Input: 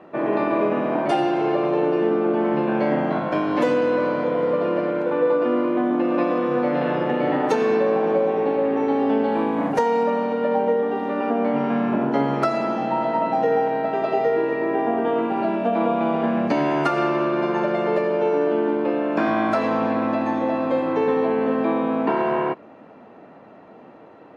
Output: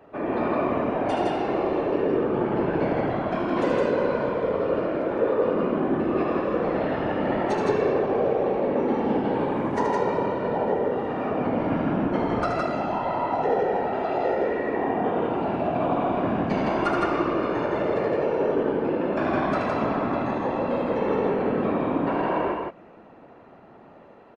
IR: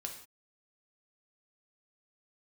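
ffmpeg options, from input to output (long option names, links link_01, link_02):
-af "afftfilt=real='hypot(re,im)*cos(2*PI*random(0))':imag='hypot(re,im)*sin(2*PI*random(1))':win_size=512:overlap=0.75,aecho=1:1:75.8|163.3:0.501|0.794,aresample=22050,aresample=44100"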